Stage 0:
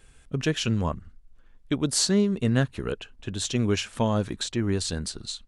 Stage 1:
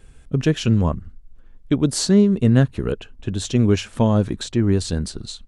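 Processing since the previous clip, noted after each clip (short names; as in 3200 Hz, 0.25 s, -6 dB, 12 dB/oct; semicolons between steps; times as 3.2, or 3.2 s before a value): tilt shelf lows +4.5 dB, about 670 Hz; gain +4.5 dB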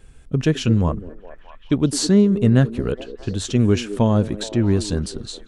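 delay with a stepping band-pass 0.21 s, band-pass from 350 Hz, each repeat 0.7 oct, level -9.5 dB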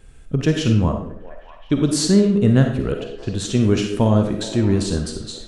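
reverb RT60 0.50 s, pre-delay 10 ms, DRR 4 dB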